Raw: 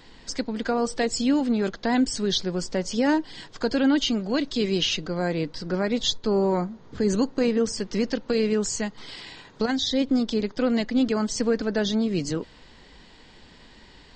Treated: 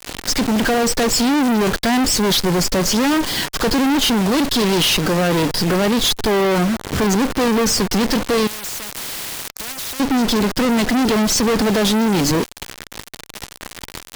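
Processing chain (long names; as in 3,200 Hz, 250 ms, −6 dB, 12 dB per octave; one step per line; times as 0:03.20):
bit reduction 7 bits
fuzz pedal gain 37 dB, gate −45 dBFS
0:08.47–0:10.00: every bin compressed towards the loudest bin 4 to 1
level −1.5 dB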